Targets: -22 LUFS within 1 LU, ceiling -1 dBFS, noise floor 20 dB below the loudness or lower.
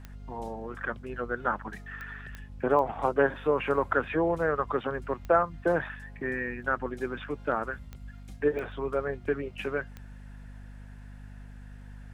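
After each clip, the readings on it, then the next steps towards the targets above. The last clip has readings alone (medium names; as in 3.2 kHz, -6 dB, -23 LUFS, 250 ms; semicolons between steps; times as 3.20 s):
clicks found 8; hum 50 Hz; highest harmonic 250 Hz; hum level -43 dBFS; loudness -30.0 LUFS; peak level -10.0 dBFS; loudness target -22.0 LUFS
-> de-click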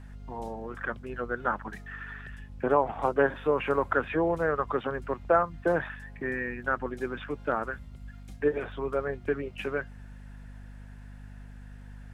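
clicks found 0; hum 50 Hz; highest harmonic 250 Hz; hum level -43 dBFS
-> hum notches 50/100/150/200/250 Hz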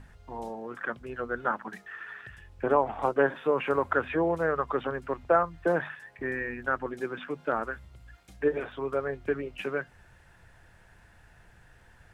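hum not found; loudness -30.0 LUFS; peak level -10.0 dBFS; loudness target -22.0 LUFS
-> trim +8 dB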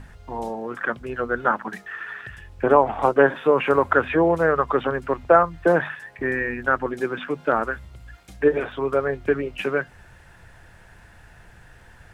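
loudness -22.0 LUFS; peak level -2.0 dBFS; noise floor -50 dBFS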